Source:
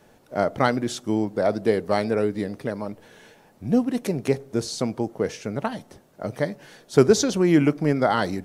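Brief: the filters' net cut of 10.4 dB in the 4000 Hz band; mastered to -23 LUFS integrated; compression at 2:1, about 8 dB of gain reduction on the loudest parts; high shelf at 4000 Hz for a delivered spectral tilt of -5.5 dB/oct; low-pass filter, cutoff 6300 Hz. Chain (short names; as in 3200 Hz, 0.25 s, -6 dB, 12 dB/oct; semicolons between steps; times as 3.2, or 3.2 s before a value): LPF 6300 Hz; high shelf 4000 Hz -7 dB; bell 4000 Hz -8 dB; compressor 2:1, threshold -25 dBFS; gain +6 dB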